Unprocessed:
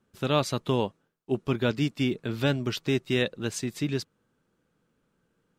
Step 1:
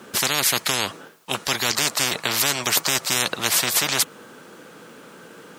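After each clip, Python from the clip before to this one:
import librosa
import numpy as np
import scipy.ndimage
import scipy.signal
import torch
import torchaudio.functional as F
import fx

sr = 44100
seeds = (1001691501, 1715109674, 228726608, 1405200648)

y = scipy.signal.sosfilt(scipy.signal.bessel(2, 360.0, 'highpass', norm='mag', fs=sr, output='sos'), x)
y = fx.spectral_comp(y, sr, ratio=10.0)
y = y * librosa.db_to_amplitude(8.5)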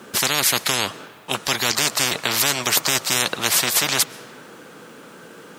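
y = fx.rev_freeverb(x, sr, rt60_s=3.5, hf_ratio=0.4, predelay_ms=85, drr_db=18.5)
y = y * librosa.db_to_amplitude(1.5)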